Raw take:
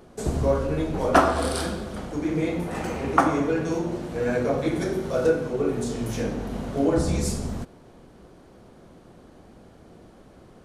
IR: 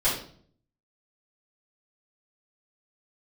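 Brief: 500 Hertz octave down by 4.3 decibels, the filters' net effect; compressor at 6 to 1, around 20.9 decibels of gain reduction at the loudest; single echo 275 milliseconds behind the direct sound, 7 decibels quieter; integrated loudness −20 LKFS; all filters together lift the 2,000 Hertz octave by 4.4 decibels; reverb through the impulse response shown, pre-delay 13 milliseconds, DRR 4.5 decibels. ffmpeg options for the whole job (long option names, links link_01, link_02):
-filter_complex "[0:a]equalizer=frequency=500:width_type=o:gain=-5.5,equalizer=frequency=2000:width_type=o:gain=6.5,acompressor=threshold=-36dB:ratio=6,aecho=1:1:275:0.447,asplit=2[link_01][link_02];[1:a]atrim=start_sample=2205,adelay=13[link_03];[link_02][link_03]afir=irnorm=-1:irlink=0,volume=-16.5dB[link_04];[link_01][link_04]amix=inputs=2:normalize=0,volume=17dB"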